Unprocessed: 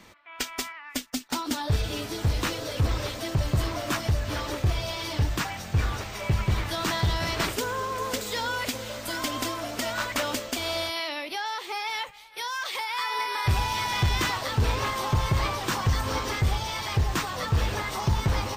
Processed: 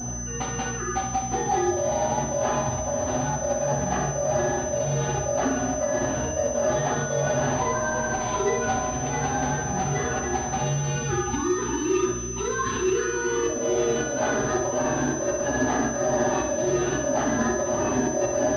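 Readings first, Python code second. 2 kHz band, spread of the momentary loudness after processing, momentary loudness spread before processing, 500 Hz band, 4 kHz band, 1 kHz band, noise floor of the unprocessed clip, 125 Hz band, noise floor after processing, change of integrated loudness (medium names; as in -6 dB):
+0.5 dB, 3 LU, 6 LU, +10.5 dB, -9.0 dB, +3.5 dB, -44 dBFS, -2.5 dB, -30 dBFS, +3.0 dB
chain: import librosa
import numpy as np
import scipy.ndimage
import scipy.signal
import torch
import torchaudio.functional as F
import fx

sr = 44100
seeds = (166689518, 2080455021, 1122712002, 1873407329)

y = fx.band_swap(x, sr, width_hz=500)
y = fx.add_hum(y, sr, base_hz=60, snr_db=15)
y = fx.low_shelf(y, sr, hz=460.0, db=11.5)
y = fx.over_compress(y, sr, threshold_db=-26.0, ratio=-1.0)
y = fx.peak_eq(y, sr, hz=2200.0, db=-14.5, octaves=0.43)
y = fx.level_steps(y, sr, step_db=10)
y = fx.highpass(y, sr, hz=240.0, slope=6)
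y = fx.room_flutter(y, sr, wall_m=11.0, rt60_s=0.68)
y = fx.rev_fdn(y, sr, rt60_s=0.45, lf_ratio=1.0, hf_ratio=0.5, size_ms=24.0, drr_db=-6.0)
y = fx.pwm(y, sr, carrier_hz=6100.0)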